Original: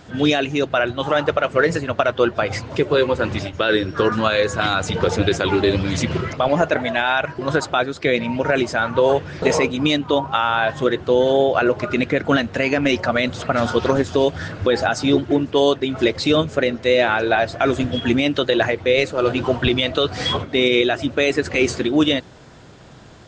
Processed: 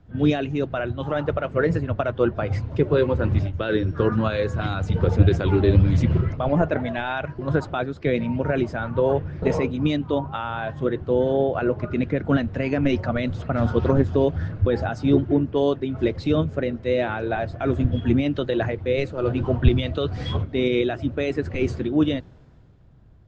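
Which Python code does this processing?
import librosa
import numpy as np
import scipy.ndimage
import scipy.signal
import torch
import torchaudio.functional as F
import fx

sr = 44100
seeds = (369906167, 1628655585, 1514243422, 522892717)

y = fx.rider(x, sr, range_db=10, speed_s=2.0)
y = fx.riaa(y, sr, side='playback')
y = fx.band_widen(y, sr, depth_pct=40)
y = y * librosa.db_to_amplitude(-8.0)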